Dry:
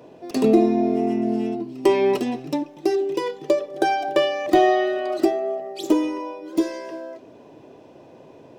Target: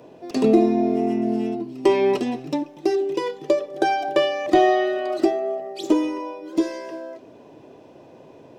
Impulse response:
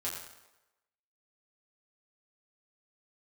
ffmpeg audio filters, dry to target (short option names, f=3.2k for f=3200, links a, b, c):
-filter_complex "[0:a]acrossover=split=8700[a][b];[b]acompressor=threshold=-56dB:ratio=4:attack=1:release=60[c];[a][c]amix=inputs=2:normalize=0"